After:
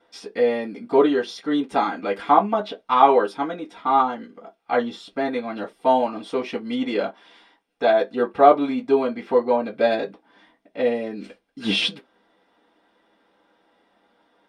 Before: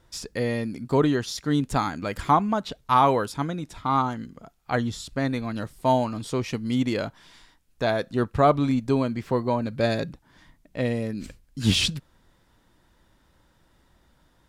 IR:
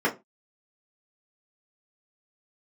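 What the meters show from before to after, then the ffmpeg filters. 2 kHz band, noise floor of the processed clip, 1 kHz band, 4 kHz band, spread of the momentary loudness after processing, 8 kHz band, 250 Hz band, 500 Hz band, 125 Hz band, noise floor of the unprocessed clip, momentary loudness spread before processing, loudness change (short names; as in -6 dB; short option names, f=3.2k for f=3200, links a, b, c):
+2.5 dB, -66 dBFS, +5.0 dB, +1.0 dB, 13 LU, n/a, 0.0 dB, +6.5 dB, -15.5 dB, -63 dBFS, 10 LU, +3.5 dB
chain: -filter_complex "[0:a]highshelf=f=11k:g=-8[a];[1:a]atrim=start_sample=2205,asetrate=74970,aresample=44100[b];[a][b]afir=irnorm=-1:irlink=0,volume=-7dB"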